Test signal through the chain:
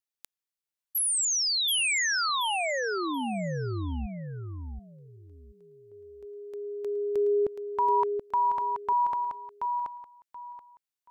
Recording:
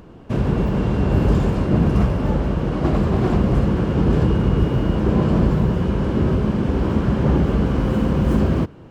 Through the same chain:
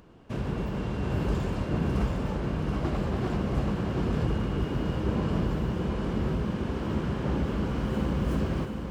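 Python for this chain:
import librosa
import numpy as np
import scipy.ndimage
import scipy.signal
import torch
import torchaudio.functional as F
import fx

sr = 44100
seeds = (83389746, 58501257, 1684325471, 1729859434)

p1 = fx.tilt_shelf(x, sr, db=-3.0, hz=1100.0)
p2 = p1 + fx.echo_feedback(p1, sr, ms=729, feedback_pct=23, wet_db=-5, dry=0)
y = F.gain(torch.from_numpy(p2), -9.0).numpy()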